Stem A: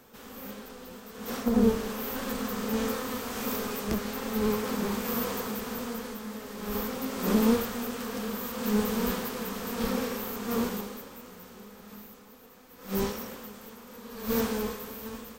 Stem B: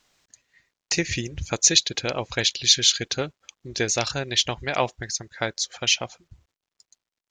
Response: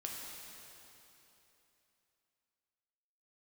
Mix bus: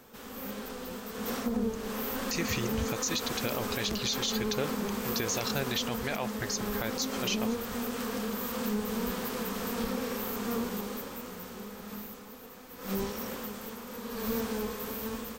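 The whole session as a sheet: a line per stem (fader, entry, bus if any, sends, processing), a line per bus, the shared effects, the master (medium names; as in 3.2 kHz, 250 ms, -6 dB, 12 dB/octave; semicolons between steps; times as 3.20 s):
+1.0 dB, 0.00 s, no send, compression 3:1, threshold -37 dBFS, peak gain reduction 14.5 dB; level rider gain up to 4 dB
-2.0 dB, 1.40 s, no send, compression 3:1, threshold -24 dBFS, peak gain reduction 9.5 dB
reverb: none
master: peak limiter -20.5 dBFS, peak gain reduction 8.5 dB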